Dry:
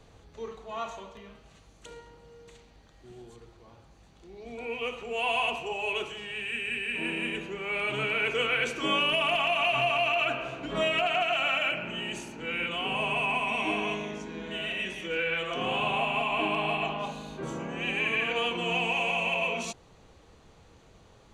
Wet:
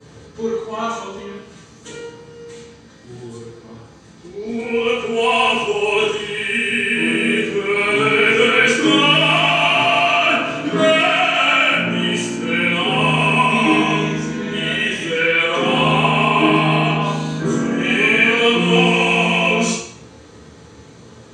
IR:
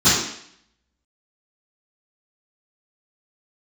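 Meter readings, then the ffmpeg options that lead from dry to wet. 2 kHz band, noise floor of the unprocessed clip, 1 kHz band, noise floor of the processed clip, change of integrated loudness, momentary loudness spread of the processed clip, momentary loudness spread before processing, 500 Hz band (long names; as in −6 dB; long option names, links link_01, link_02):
+12.5 dB, −57 dBFS, +12.0 dB, −43 dBFS, +13.0 dB, 12 LU, 13 LU, +13.5 dB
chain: -filter_complex "[0:a]lowshelf=frequency=270:gain=-5.5[link_01];[1:a]atrim=start_sample=2205,asetrate=52920,aresample=44100[link_02];[link_01][link_02]afir=irnorm=-1:irlink=0,volume=-6.5dB"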